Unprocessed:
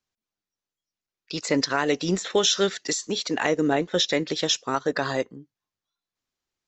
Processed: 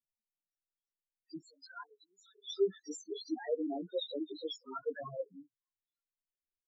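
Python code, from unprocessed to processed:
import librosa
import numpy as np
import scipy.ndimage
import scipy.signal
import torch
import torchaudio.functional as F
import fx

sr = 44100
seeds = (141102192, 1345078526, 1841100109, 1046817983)

y = fx.spec_topn(x, sr, count=2)
y = fx.ladder_highpass(y, sr, hz=980.0, resonance_pct=55, at=(1.41, 2.48))
y = fx.ensemble(y, sr)
y = y * 10.0 ** (-4.5 / 20.0)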